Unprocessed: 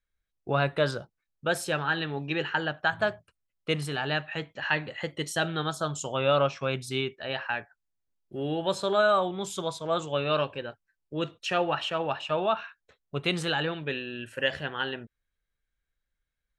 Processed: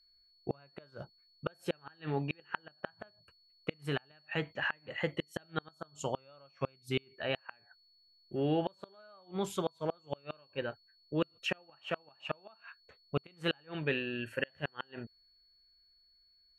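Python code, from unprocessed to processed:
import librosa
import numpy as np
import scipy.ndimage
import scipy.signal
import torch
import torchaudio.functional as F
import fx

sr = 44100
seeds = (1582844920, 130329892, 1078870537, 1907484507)

y = fx.band_shelf(x, sr, hz=5700.0, db=-8.5, octaves=1.7)
y = fx.gate_flip(y, sr, shuts_db=-19.0, range_db=-35)
y = y + 10.0 ** (-65.0 / 20.0) * np.sin(2.0 * np.pi * 4400.0 * np.arange(len(y)) / sr)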